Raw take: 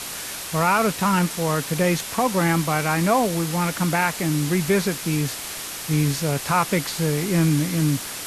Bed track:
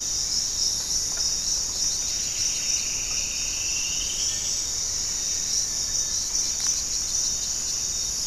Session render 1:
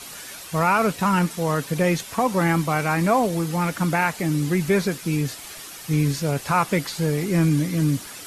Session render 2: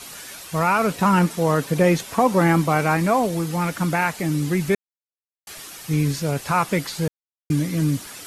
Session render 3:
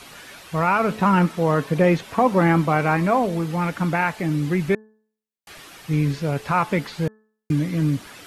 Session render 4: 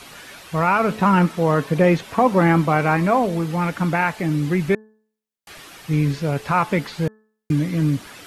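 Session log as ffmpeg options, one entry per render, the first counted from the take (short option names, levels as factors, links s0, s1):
-af "afftdn=nr=9:nf=-33"
-filter_complex "[0:a]asettb=1/sr,asplit=3[s0][s1][s2];[s0]atrim=end=0.914[s3];[s1]atrim=start=0.91:end=2.97,asetpts=PTS-STARTPTS,afade=t=in:d=0.004:c=qsin,afade=t=out:st=2.056:d=0.004:c=qsin,equalizer=f=420:w=0.38:g=4.5[s4];[s2]atrim=start=2.966[s5];[s3][s4]acrossfade=d=0.004:c1=hsin:c2=qsin[s6];[s6][s5]acrossfade=d=0.004:c1=qsin:c2=hsin,asplit=5[s7][s8][s9][s10][s11];[s7]atrim=end=4.75,asetpts=PTS-STARTPTS,afade=t=out:st=4.746:d=0.004:c=hsin[s12];[s8]atrim=start=4.75:end=5.47,asetpts=PTS-STARTPTS,volume=0[s13];[s9]atrim=start=5.47:end=7.08,asetpts=PTS-STARTPTS,afade=t=in:d=0.004:c=hsin,afade=t=out:st=1.606:d=0.004:c=hsin[s14];[s10]atrim=start=7.08:end=7.5,asetpts=PTS-STARTPTS,volume=0[s15];[s11]atrim=start=7.5,asetpts=PTS-STARTPTS,afade=t=in:d=0.004:c=hsin[s16];[s12][s13][s14][s15][s16]concat=n=5:v=0:a=1"
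-filter_complex "[0:a]bandreject=f=216.5:t=h:w=4,bandreject=f=433:t=h:w=4,bandreject=f=649.5:t=h:w=4,bandreject=f=866:t=h:w=4,bandreject=f=1082.5:t=h:w=4,bandreject=f=1299:t=h:w=4,bandreject=f=1515.5:t=h:w=4,bandreject=f=1732:t=h:w=4,acrossover=split=3900[s0][s1];[s1]acompressor=threshold=0.00355:ratio=4:attack=1:release=60[s2];[s0][s2]amix=inputs=2:normalize=0"
-af "volume=1.19"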